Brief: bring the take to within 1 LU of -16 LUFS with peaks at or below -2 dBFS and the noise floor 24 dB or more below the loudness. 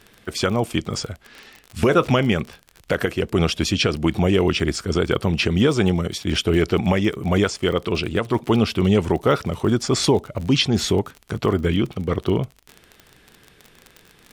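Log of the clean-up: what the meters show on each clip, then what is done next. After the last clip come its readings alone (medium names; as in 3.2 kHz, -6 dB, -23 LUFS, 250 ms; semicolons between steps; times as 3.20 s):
tick rate 33 per s; loudness -21.0 LUFS; peak level -4.5 dBFS; loudness target -16.0 LUFS
-> de-click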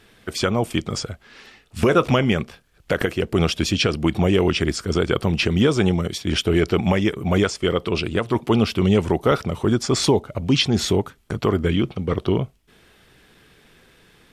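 tick rate 0 per s; loudness -21.0 LUFS; peak level -4.5 dBFS; loudness target -16.0 LUFS
-> trim +5 dB; peak limiter -2 dBFS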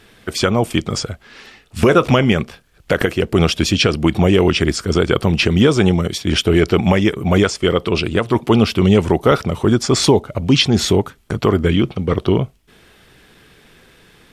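loudness -16.0 LUFS; peak level -2.0 dBFS; noise floor -52 dBFS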